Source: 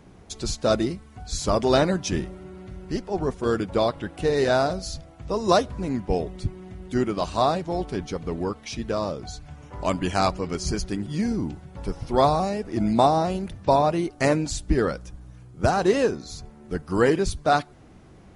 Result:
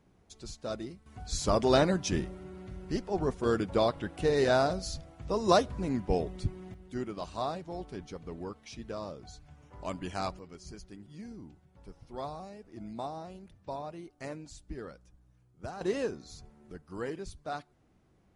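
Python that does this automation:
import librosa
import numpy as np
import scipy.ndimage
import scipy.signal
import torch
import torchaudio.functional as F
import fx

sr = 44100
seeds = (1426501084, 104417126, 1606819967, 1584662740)

y = fx.gain(x, sr, db=fx.steps((0.0, -15.5), (1.06, -4.5), (6.74, -12.5), (10.39, -20.0), (15.81, -11.0), (16.72, -17.5)))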